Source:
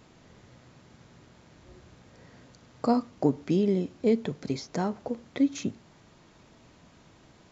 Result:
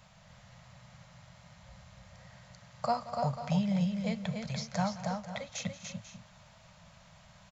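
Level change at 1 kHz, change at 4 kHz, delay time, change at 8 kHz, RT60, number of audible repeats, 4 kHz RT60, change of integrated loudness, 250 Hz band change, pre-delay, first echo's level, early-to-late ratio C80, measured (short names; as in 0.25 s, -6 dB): +1.0 dB, +1.5 dB, 0.179 s, n/a, none, 5, none, -5.5 dB, -7.0 dB, none, -16.5 dB, none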